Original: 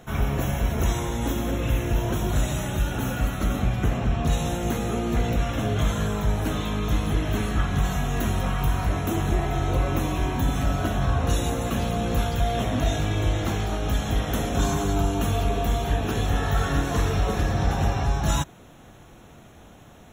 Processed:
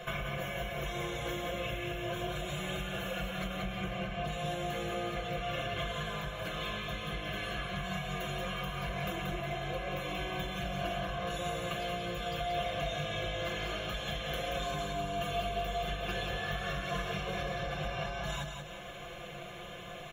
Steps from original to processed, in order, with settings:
comb filter 5.8 ms
downward compressor, threshold −35 dBFS, peak gain reduction 17 dB
repeating echo 181 ms, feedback 40%, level −6 dB
convolution reverb RT60 0.35 s, pre-delay 3 ms, DRR 17 dB
level −3 dB

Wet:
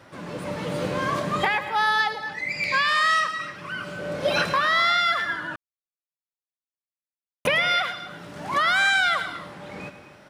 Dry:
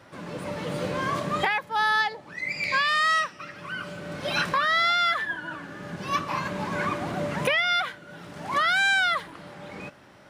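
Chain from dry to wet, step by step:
0:03.98–0:04.48: parametric band 530 Hz +9 dB 0.65 octaves
single-tap delay 107 ms −12.5 dB
reverb whose tail is shaped and stops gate 290 ms rising, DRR 12 dB
0:05.56–0:07.45: silence
level +1.5 dB

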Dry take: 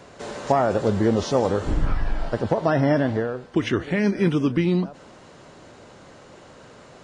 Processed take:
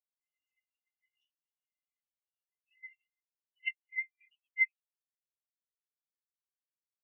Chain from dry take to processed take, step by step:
Chebyshev high-pass with heavy ripple 2,000 Hz, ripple 9 dB
treble cut that deepens with the level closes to 2,600 Hz, closed at −37 dBFS
every bin expanded away from the loudest bin 4 to 1
level +3.5 dB

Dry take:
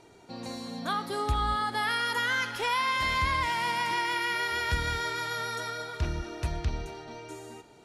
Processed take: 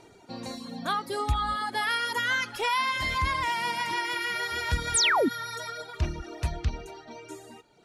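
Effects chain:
sound drawn into the spectrogram fall, 0:04.94–0:05.29, 220–11,000 Hz −25 dBFS
reverb reduction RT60 1.2 s
level +2.5 dB

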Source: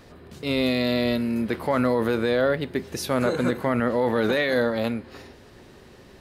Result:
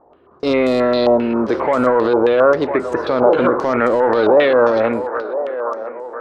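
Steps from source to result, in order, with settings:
flat-topped bell 640 Hz +13 dB 2.7 octaves
in parallel at −4.5 dB: soft clipping −15.5 dBFS, distortion −7 dB
on the sum: noise gate −26 dBFS, range −18 dB
on a send: delay with a band-pass on its return 1,004 ms, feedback 48%, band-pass 780 Hz, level −12.5 dB
on the sum: brickwall limiter −5.5 dBFS, peak gain reduction 6.5 dB
low-pass on a step sequencer 7.5 Hz 840–7,900 Hz
level −2.5 dB

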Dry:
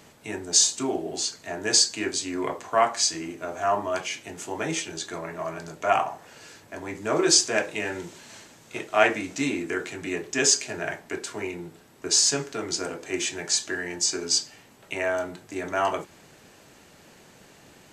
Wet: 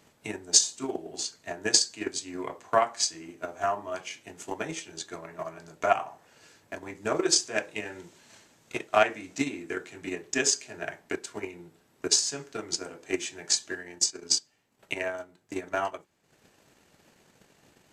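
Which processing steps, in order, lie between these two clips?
transient designer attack +12 dB, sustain −1 dB, from 0:13.78 sustain −11 dB
level −9.5 dB

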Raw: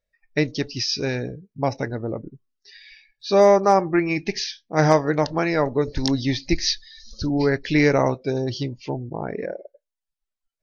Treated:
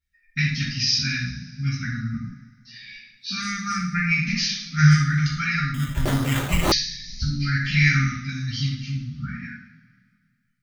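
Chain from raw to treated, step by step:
linear-phase brick-wall band-stop 260–1,200 Hz
0:03.93–0:05.12: low-shelf EQ 340 Hz +4.5 dB
coupled-rooms reverb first 0.6 s, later 2.1 s, from −18 dB, DRR −9.5 dB
0:05.74–0:06.72: sample-rate reduction 5,100 Hz, jitter 0%
level −5.5 dB

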